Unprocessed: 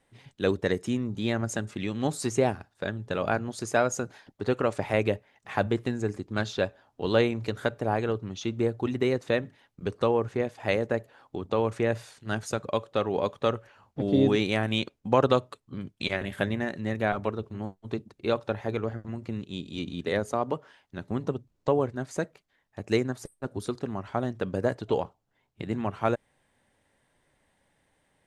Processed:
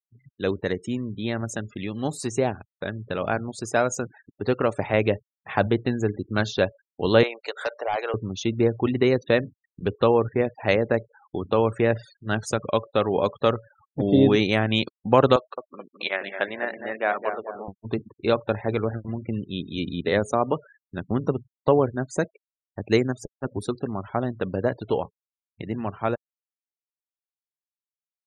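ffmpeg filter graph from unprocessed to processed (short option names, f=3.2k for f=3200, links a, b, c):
-filter_complex "[0:a]asettb=1/sr,asplit=3[a][b][c];[a]atrim=end=7.234[d];[b]atrim=start=7.23:end=8.14,asetpts=PTS-STARTPTS,afade=t=in:d=0.004:c=qsin,afade=t=out:st=0.906:d=0.004:c=qsin,acompressor=mode=upward:threshold=-31dB:ratio=2.5:attack=3.2:release=140:knee=2.83:detection=peak,highpass=f=520:w=0.5412,highpass=f=520:w=1.3066,volume=25.5dB,asoftclip=hard,volume=-25.5dB[e];[c]atrim=start=8.136[f];[d][e]acrossfade=d=0.004:c1=hsin:c2=qsin[g];[g][f]acrossfade=d=0.004:c1=qsin:c2=hsin,asettb=1/sr,asplit=3[h][i][j];[h]atrim=end=15.364[k];[i]atrim=start=15.36:end=17.68,asetpts=PTS-STARTPTS,afade=t=in:d=0.004:c=qsin,afade=t=out:st=2.316:d=0.004:c=qsin,highpass=530,lowpass=3.3k,asplit=2[l][m];[m]adelay=215,lowpass=f=1.4k:p=1,volume=-6.5dB,asplit=2[n][o];[o]adelay=215,lowpass=f=1.4k:p=1,volume=0.5,asplit=2[p][q];[q]adelay=215,lowpass=f=1.4k:p=1,volume=0.5,asplit=2[r][s];[s]adelay=215,lowpass=f=1.4k:p=1,volume=0.5,asplit=2[t][u];[u]adelay=215,lowpass=f=1.4k:p=1,volume=0.5,asplit=2[v][w];[w]adelay=215,lowpass=f=1.4k:p=1,volume=0.5[x];[l][n][p][r][t][v][x]amix=inputs=7:normalize=0,atrim=end_sample=102312[y];[j]atrim=start=17.676[z];[k][y]acrossfade=d=0.004:c1=hsin:c2=qsin[aa];[aa][z]acrossfade=d=0.004:c1=qsin:c2=hsin,afftfilt=real='re*gte(hypot(re,im),0.00708)':imag='im*gte(hypot(re,im),0.00708)':win_size=1024:overlap=0.75,dynaudnorm=f=300:g=31:m=7dB"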